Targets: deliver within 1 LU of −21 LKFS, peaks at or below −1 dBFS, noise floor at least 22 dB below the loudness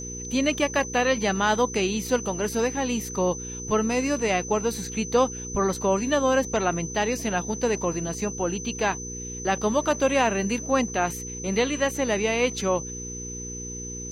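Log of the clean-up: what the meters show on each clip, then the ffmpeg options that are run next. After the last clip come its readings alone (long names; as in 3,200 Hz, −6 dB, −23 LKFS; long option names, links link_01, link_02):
mains hum 60 Hz; hum harmonics up to 480 Hz; level of the hum −36 dBFS; interfering tone 6,100 Hz; level of the tone −35 dBFS; integrated loudness −25.5 LKFS; sample peak −10.0 dBFS; target loudness −21.0 LKFS
→ -af "bandreject=frequency=60:width_type=h:width=4,bandreject=frequency=120:width_type=h:width=4,bandreject=frequency=180:width_type=h:width=4,bandreject=frequency=240:width_type=h:width=4,bandreject=frequency=300:width_type=h:width=4,bandreject=frequency=360:width_type=h:width=4,bandreject=frequency=420:width_type=h:width=4,bandreject=frequency=480:width_type=h:width=4"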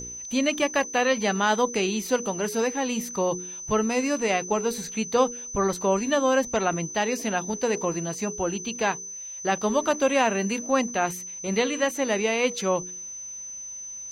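mains hum none found; interfering tone 6,100 Hz; level of the tone −35 dBFS
→ -af "bandreject=frequency=6100:width=30"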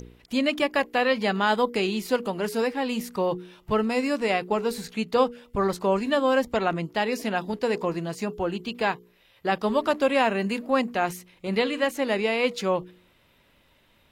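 interfering tone none found; integrated loudness −25.5 LKFS; sample peak −9.5 dBFS; target loudness −21.0 LKFS
→ -af "volume=4.5dB"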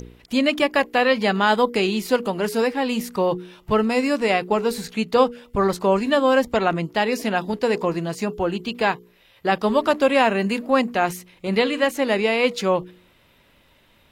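integrated loudness −21.0 LKFS; sample peak −5.0 dBFS; background noise floor −57 dBFS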